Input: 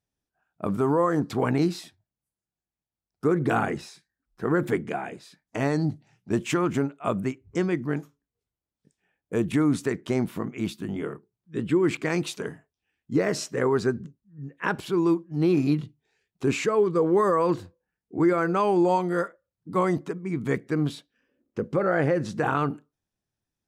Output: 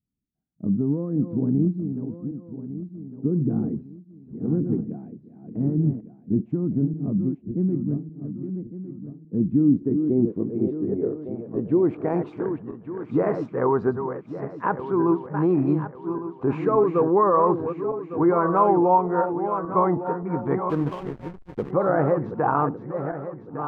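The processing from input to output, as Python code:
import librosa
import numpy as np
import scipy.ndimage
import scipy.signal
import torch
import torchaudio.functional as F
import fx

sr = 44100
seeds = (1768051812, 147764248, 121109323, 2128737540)

y = fx.reverse_delay_fb(x, sr, ms=578, feedback_pct=58, wet_db=-8.0)
y = fx.filter_sweep_lowpass(y, sr, from_hz=230.0, to_hz=980.0, start_s=9.38, end_s=12.64, q=2.2)
y = fx.backlash(y, sr, play_db=-28.5, at=(20.69, 21.7), fade=0.02)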